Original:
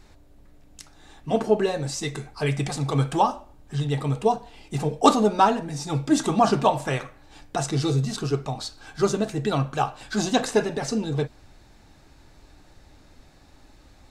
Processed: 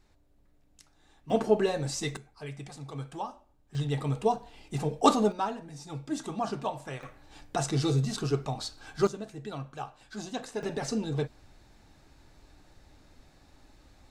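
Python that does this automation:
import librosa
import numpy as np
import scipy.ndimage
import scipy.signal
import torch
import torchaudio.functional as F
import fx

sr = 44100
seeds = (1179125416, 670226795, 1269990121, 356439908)

y = fx.gain(x, sr, db=fx.steps((0.0, -13.0), (1.3, -3.5), (2.17, -16.0), (3.75, -5.0), (5.32, -13.0), (7.03, -3.5), (9.07, -14.5), (10.63, -5.0)))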